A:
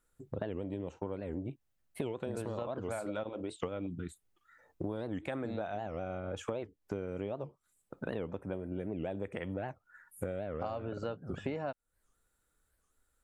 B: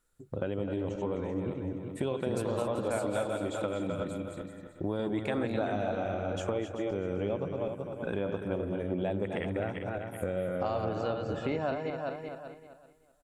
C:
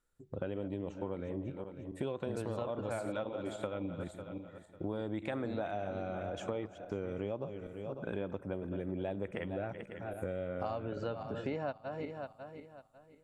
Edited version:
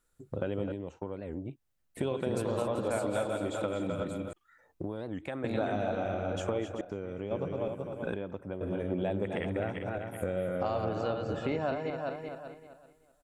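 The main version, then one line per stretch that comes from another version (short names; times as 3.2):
B
0.72–1.97 from A
4.33–5.44 from A
6.81–7.31 from C
8.14–8.61 from C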